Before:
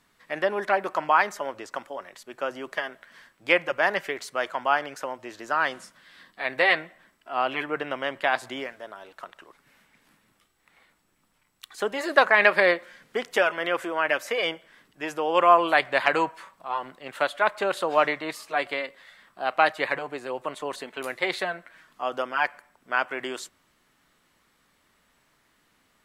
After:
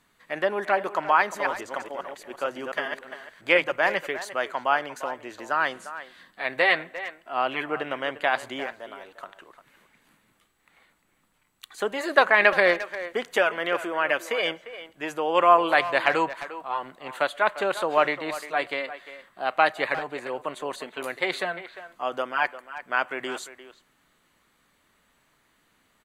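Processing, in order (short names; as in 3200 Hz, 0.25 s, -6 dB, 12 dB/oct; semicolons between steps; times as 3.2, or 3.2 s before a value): 1.19–3.76 reverse delay 0.139 s, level -4 dB; notch 5300 Hz, Q 6.6; speakerphone echo 0.35 s, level -13 dB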